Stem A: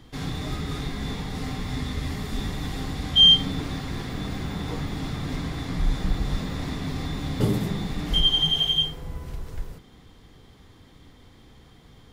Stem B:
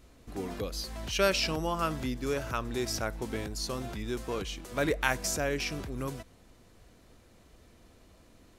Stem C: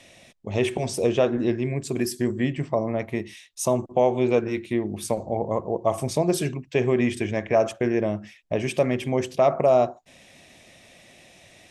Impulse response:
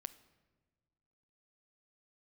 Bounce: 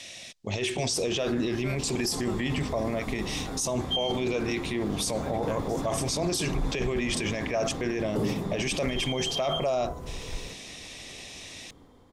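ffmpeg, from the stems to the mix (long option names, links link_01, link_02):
-filter_complex "[0:a]equalizer=frequency=250:width_type=o:width=1:gain=5,equalizer=frequency=500:width_type=o:width=1:gain=8,equalizer=frequency=1000:width_type=o:width=1:gain=7,equalizer=frequency=2000:width_type=o:width=1:gain=-3,equalizer=frequency=4000:width_type=o:width=1:gain=-3,equalizer=frequency=8000:width_type=o:width=1:gain=3,dynaudnorm=framelen=160:gausssize=17:maxgain=12dB,adelay=750,volume=-14dB[link_01];[1:a]adelay=450,volume=-13dB[link_02];[2:a]equalizer=frequency=5000:width_type=o:width=2.3:gain=14.5,volume=-0.5dB[link_03];[link_01][link_02][link_03]amix=inputs=3:normalize=0,alimiter=limit=-19.5dB:level=0:latency=1:release=16"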